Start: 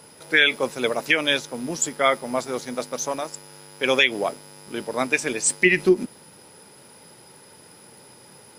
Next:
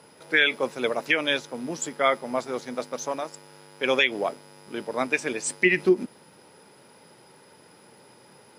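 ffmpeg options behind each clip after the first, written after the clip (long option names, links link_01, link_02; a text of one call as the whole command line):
ffmpeg -i in.wav -af "highpass=frequency=150:poles=1,aemphasis=mode=reproduction:type=cd,volume=-2dB" out.wav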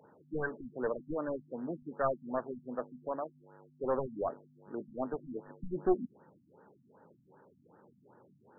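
ffmpeg -i in.wav -af "aeval=exprs='clip(val(0),-1,0.0794)':channel_layout=same,afftfilt=real='re*lt(b*sr/1024,260*pow(1900/260,0.5+0.5*sin(2*PI*2.6*pts/sr)))':imag='im*lt(b*sr/1024,260*pow(1900/260,0.5+0.5*sin(2*PI*2.6*pts/sr)))':win_size=1024:overlap=0.75,volume=-6dB" out.wav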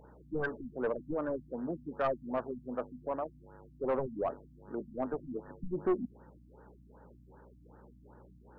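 ffmpeg -i in.wav -af "asoftclip=type=tanh:threshold=-24dB,aeval=exprs='val(0)+0.001*(sin(2*PI*60*n/s)+sin(2*PI*2*60*n/s)/2+sin(2*PI*3*60*n/s)/3+sin(2*PI*4*60*n/s)/4+sin(2*PI*5*60*n/s)/5)':channel_layout=same,volume=2dB" out.wav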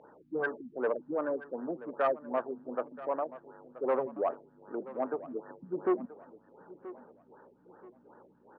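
ffmpeg -i in.wav -af "highpass=320,lowpass=2800,aecho=1:1:979|1958|2937:0.15|0.0509|0.0173,volume=3.5dB" out.wav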